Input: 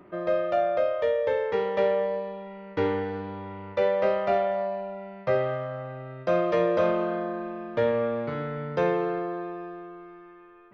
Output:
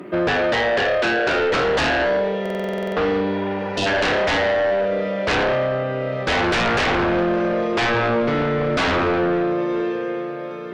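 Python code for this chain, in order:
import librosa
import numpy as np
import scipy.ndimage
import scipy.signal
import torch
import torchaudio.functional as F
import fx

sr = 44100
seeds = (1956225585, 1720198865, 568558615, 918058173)

p1 = scipy.signal.sosfilt(scipy.signal.butter(2, 200.0, 'highpass', fs=sr, output='sos'), x)
p2 = fx.peak_eq(p1, sr, hz=960.0, db=-9.0, octaves=1.5)
p3 = p2 + fx.echo_diffused(p2, sr, ms=1000, feedback_pct=45, wet_db=-14.5, dry=0)
p4 = fx.fold_sine(p3, sr, drive_db=15, ceiling_db=-16.0)
p5 = fx.spec_repair(p4, sr, seeds[0], start_s=3.34, length_s=0.5, low_hz=750.0, high_hz=2500.0, source='before')
y = fx.buffer_glitch(p5, sr, at_s=(2.41,), block=2048, repeats=11)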